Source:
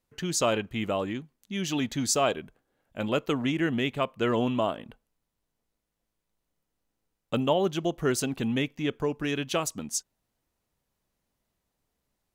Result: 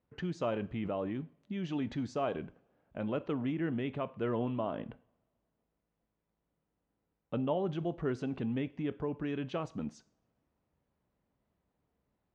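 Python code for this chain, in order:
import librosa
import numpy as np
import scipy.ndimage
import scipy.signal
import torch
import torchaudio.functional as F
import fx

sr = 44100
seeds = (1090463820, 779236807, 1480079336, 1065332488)

p1 = fx.over_compress(x, sr, threshold_db=-38.0, ratio=-1.0)
p2 = x + (p1 * librosa.db_to_amplitude(-2.5))
p3 = scipy.signal.sosfilt(scipy.signal.butter(2, 57.0, 'highpass', fs=sr, output='sos'), p2)
p4 = fx.spacing_loss(p3, sr, db_at_10k=39)
p5 = fx.rev_double_slope(p4, sr, seeds[0], early_s=0.45, late_s=2.1, knee_db=-26, drr_db=14.5)
y = p5 * librosa.db_to_amplitude(-6.5)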